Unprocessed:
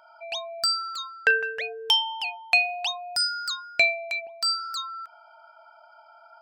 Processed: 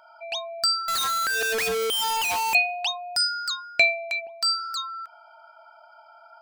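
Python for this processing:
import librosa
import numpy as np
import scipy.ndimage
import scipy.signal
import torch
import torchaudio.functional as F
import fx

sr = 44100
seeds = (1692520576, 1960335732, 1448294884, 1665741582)

y = fx.clip_1bit(x, sr, at=(0.88, 2.55))
y = y * librosa.db_to_amplitude(1.5)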